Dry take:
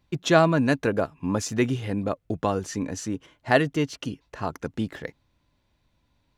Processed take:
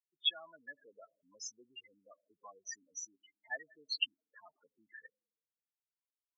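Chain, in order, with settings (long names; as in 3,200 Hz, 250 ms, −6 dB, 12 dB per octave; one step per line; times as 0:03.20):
fade in at the beginning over 0.83 s
four-comb reverb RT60 1.6 s, combs from 29 ms, DRR 20 dB
spectral peaks only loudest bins 8
flat-topped band-pass 3,600 Hz, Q 2.2
level +15 dB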